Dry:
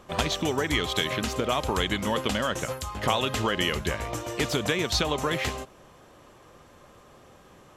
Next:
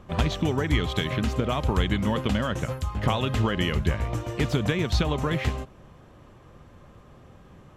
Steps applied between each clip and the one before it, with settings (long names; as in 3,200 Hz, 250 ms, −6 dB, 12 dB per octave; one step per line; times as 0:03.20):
bass and treble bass +11 dB, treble −7 dB
level −2 dB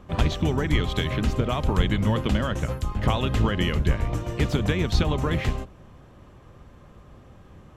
sub-octave generator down 1 octave, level −1 dB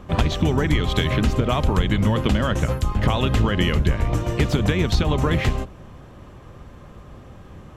downward compressor, threshold −21 dBFS, peak gain reduction 7 dB
level +6.5 dB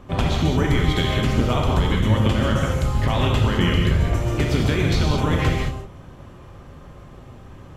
reverb whose tail is shaped and stops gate 240 ms flat, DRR −1 dB
level −3 dB